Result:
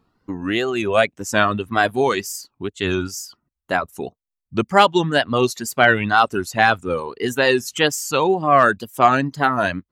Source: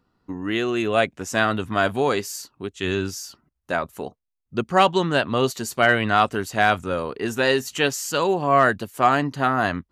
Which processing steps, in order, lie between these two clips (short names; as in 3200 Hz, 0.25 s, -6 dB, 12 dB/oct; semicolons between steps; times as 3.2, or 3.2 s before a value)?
reverb removal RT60 1.2 s; wow and flutter 110 cents; gain +4 dB